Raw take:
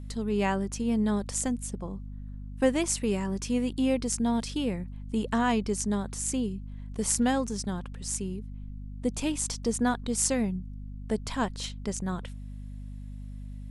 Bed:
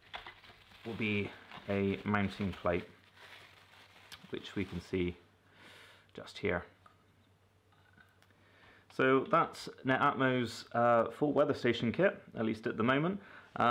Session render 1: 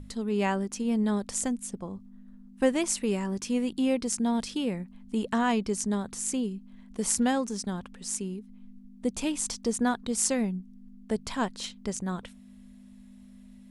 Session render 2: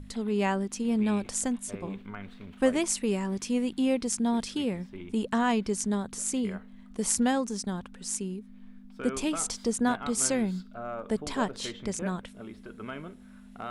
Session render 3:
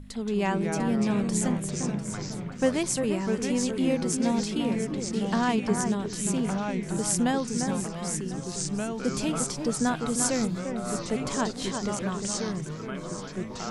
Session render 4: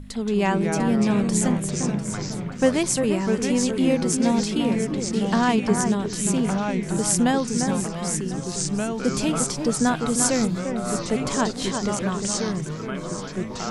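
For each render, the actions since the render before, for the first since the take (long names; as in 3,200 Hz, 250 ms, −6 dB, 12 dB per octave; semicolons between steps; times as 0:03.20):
mains-hum notches 50/100/150 Hz
mix in bed −9.5 dB
on a send: delay that swaps between a low-pass and a high-pass 349 ms, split 2,000 Hz, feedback 53%, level −6 dB; on the sum: delay with pitch and tempo change per echo 154 ms, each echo −3 semitones, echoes 3, each echo −6 dB
level +5 dB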